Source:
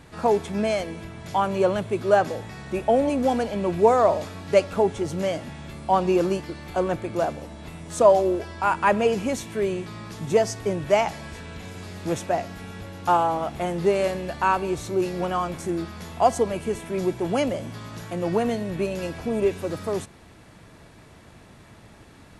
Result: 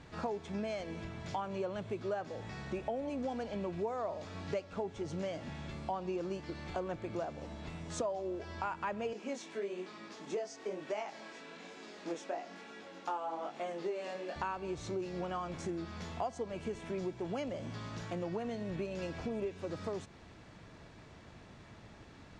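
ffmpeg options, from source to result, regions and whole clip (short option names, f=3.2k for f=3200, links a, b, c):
-filter_complex "[0:a]asettb=1/sr,asplit=3[a][b][c];[a]atrim=end=9.134[d];[b]atrim=start=9.13:end=14.36,asetpts=PTS-STARTPTS,afade=t=in:d=0.004:c=qsin,afade=t=out:st=5.226:d=0.004:c=qsin,highpass=f=240:w=0.5412,highpass=f=240:w=1.3066,flanger=delay=18.5:depth=7.2:speed=1.1[e];[c]atrim=start=14.356[f];[d][e]acrossfade=d=0.004:c1=hsin:c2=qsin[g];[g][f]acrossfade=d=0.004:c1=qsin:c2=hsin,lowpass=f=6.9k:w=0.5412,lowpass=f=6.9k:w=1.3066,acompressor=threshold=-30dB:ratio=5,volume=-5.5dB"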